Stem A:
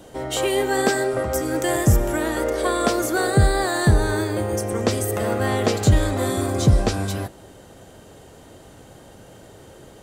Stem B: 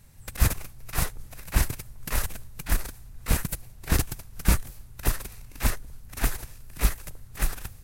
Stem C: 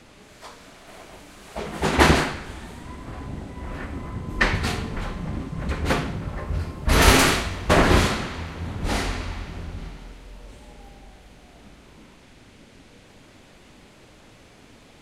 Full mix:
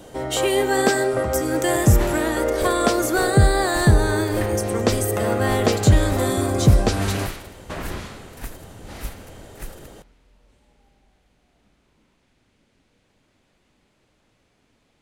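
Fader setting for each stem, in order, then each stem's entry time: +1.5 dB, -9.5 dB, -15.0 dB; 0.00 s, 2.20 s, 0.00 s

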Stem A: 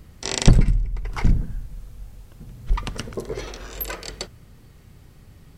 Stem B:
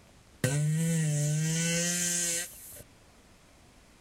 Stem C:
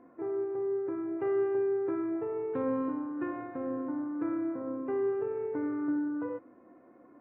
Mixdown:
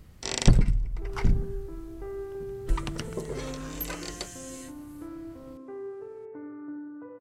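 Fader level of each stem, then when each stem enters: -5.0 dB, -15.5 dB, -8.5 dB; 0.00 s, 2.25 s, 0.80 s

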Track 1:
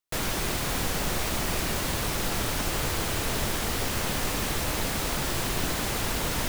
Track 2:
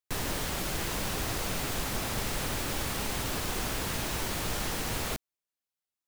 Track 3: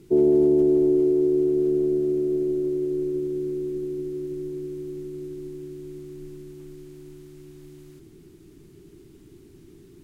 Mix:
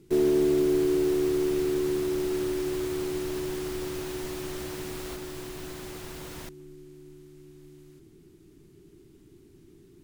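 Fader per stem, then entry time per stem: -14.0 dB, -10.0 dB, -5.0 dB; 0.00 s, 0.00 s, 0.00 s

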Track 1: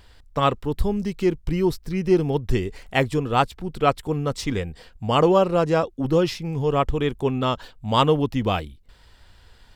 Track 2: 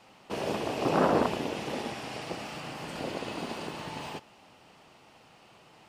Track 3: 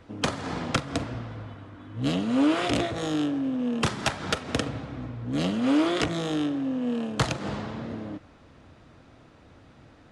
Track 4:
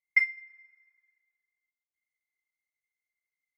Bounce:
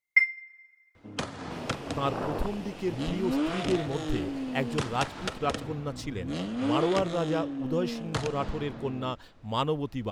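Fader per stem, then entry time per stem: -10.0 dB, -9.0 dB, -6.5 dB, +2.5 dB; 1.60 s, 1.20 s, 0.95 s, 0.00 s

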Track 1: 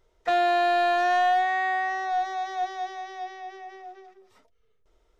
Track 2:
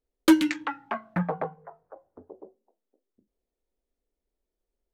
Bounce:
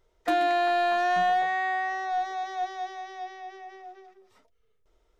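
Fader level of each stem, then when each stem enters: -2.0 dB, -16.5 dB; 0.00 s, 0.00 s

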